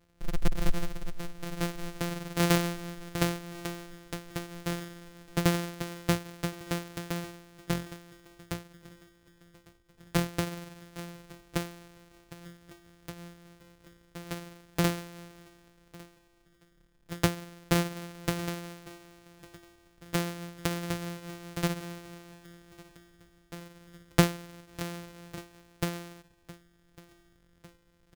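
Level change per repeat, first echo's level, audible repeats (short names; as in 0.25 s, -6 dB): -5.0 dB, -22.0 dB, 3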